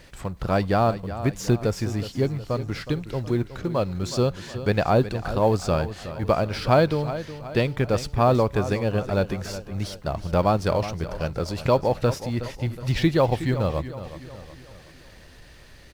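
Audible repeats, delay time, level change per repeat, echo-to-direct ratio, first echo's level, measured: 4, 368 ms, -6.5 dB, -12.0 dB, -13.0 dB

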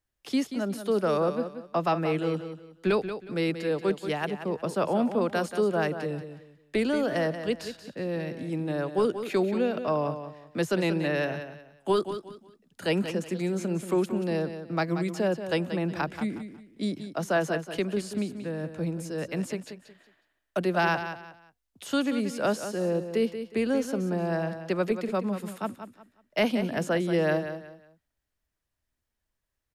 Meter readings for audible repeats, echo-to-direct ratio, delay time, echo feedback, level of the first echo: 3, -9.5 dB, 182 ms, 28%, -10.0 dB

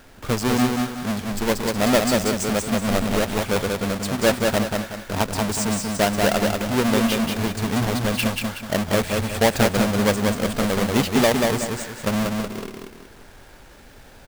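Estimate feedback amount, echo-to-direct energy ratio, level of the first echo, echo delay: 37%, -3.0 dB, -3.5 dB, 186 ms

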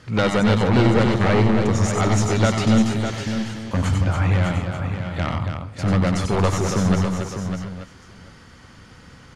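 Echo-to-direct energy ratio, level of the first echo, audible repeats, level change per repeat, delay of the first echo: -1.0 dB, -4.5 dB, 7, no regular repeats, 94 ms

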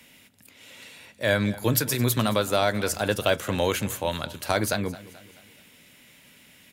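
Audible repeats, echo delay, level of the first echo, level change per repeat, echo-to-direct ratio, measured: 3, 216 ms, -18.5 dB, -6.5 dB, -17.5 dB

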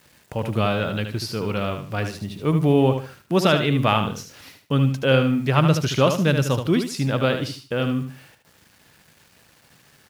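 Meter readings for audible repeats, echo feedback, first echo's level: 3, 27%, -7.5 dB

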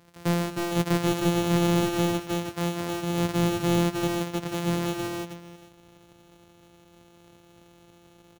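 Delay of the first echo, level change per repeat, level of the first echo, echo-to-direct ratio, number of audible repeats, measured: 154 ms, no regular repeats, -13.0 dB, -1.5 dB, 3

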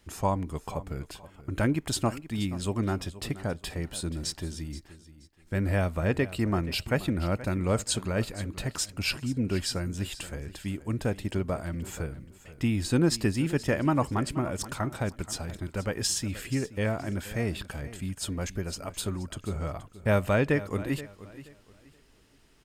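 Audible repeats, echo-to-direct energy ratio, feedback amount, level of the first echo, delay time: 2, -15.5 dB, 26%, -16.0 dB, 477 ms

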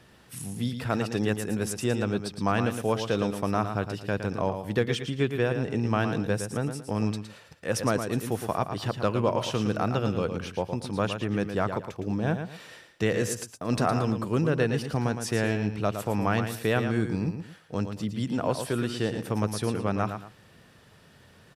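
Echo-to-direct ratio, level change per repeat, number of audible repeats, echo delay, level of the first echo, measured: -7.5 dB, -11.0 dB, 2, 113 ms, -8.0 dB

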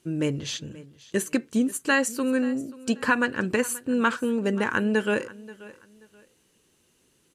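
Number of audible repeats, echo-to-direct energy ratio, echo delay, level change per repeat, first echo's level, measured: 2, -19.0 dB, 532 ms, -11.5 dB, -19.5 dB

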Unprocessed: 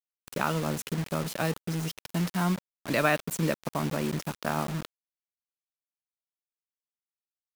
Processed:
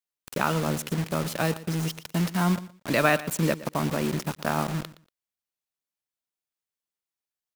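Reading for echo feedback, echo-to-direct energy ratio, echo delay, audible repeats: 19%, -17.0 dB, 118 ms, 2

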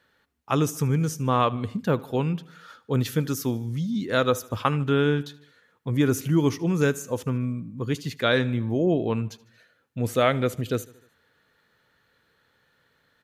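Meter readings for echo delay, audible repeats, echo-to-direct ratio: 76 ms, 3, -20.0 dB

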